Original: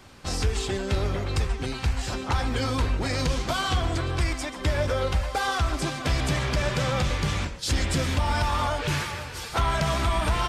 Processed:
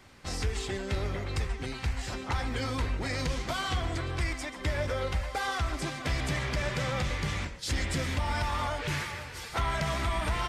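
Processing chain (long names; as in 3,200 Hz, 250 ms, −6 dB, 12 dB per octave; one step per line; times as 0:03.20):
parametric band 2,000 Hz +6 dB 0.34 octaves
level −6 dB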